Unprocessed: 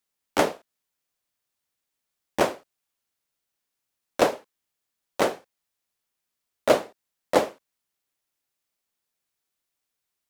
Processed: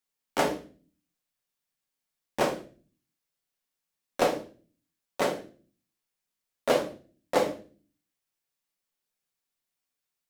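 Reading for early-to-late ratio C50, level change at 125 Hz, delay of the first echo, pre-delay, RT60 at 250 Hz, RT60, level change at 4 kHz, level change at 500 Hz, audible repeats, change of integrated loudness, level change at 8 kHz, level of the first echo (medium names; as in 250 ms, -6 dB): 11.5 dB, -1.5 dB, no echo, 4 ms, 0.65 s, 0.40 s, -3.0 dB, -3.5 dB, no echo, -4.0 dB, -3.5 dB, no echo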